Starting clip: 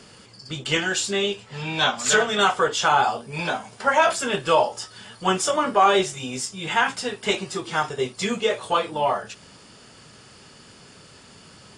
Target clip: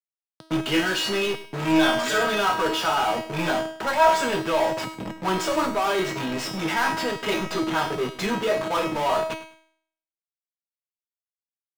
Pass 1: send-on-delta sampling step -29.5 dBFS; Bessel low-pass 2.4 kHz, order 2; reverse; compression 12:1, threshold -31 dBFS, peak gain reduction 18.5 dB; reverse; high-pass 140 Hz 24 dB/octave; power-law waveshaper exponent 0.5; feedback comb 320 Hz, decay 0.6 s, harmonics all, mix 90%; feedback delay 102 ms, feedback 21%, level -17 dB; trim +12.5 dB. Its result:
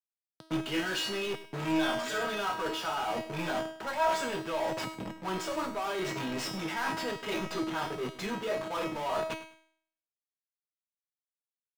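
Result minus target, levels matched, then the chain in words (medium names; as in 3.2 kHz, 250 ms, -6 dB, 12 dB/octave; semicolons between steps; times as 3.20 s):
compression: peak gain reduction +11 dB
send-on-delta sampling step -29.5 dBFS; Bessel low-pass 2.4 kHz, order 2; reverse; compression 12:1, threshold -19 dBFS, peak gain reduction 7.5 dB; reverse; high-pass 140 Hz 24 dB/octave; power-law waveshaper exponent 0.5; feedback comb 320 Hz, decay 0.6 s, harmonics all, mix 90%; feedback delay 102 ms, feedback 21%, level -17 dB; trim +12.5 dB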